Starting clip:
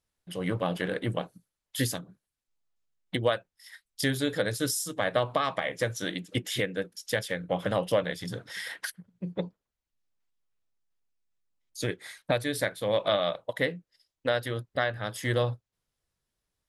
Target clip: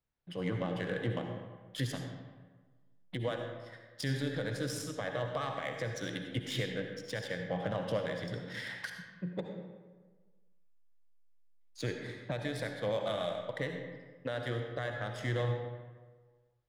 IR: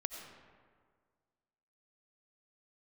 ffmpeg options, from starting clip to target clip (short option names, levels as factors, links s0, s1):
-filter_complex "[0:a]equalizer=f=140:w=6.6:g=7.5,acrossover=split=110[s0][s1];[s1]alimiter=limit=0.0891:level=0:latency=1:release=102[s2];[s0][s2]amix=inputs=2:normalize=0,adynamicsmooth=sensitivity=7:basefreq=3500[s3];[1:a]atrim=start_sample=2205,asetrate=57330,aresample=44100[s4];[s3][s4]afir=irnorm=-1:irlink=0"